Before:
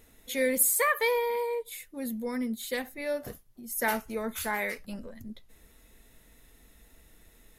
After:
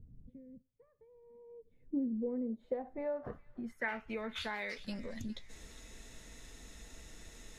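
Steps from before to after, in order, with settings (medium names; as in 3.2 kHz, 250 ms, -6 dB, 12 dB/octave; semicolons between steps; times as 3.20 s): compression 10:1, threshold -42 dBFS, peak gain reduction 22.5 dB; low-pass sweep 140 Hz -> 6.5 kHz, 1.18–5.01 s; feedback echo behind a high-pass 409 ms, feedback 46%, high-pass 2.3 kHz, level -14.5 dB; trim +5 dB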